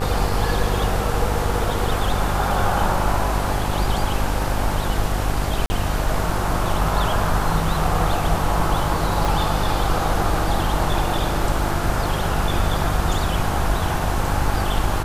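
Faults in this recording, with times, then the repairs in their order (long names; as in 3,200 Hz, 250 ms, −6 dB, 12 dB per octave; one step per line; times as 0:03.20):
mains buzz 50 Hz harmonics 34 −25 dBFS
0:05.66–0:05.70: drop-out 40 ms
0:09.25: click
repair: click removal
hum removal 50 Hz, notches 34
repair the gap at 0:05.66, 40 ms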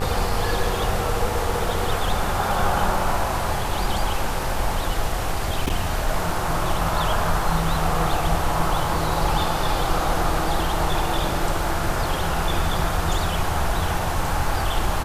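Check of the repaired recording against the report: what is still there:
0:09.25: click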